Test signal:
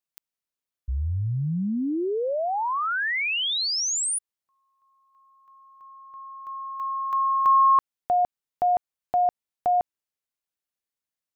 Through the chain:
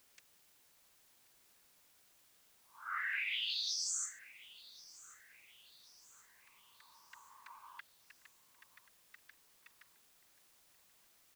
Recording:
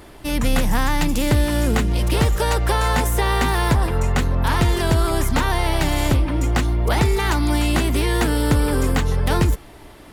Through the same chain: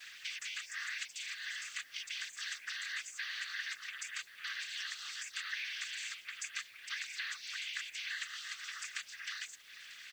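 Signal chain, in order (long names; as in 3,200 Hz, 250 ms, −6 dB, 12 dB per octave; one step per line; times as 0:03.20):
reverb reduction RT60 0.51 s
Butterworth high-pass 1,600 Hz 72 dB per octave
gate on every frequency bin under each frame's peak −20 dB strong
downward compressor 5 to 1, threshold −43 dBFS
cochlear-implant simulation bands 16
bit-depth reduction 12 bits, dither triangular
on a send: repeating echo 1,082 ms, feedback 48%, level −19.5 dB
on the sum: level +3.5 dB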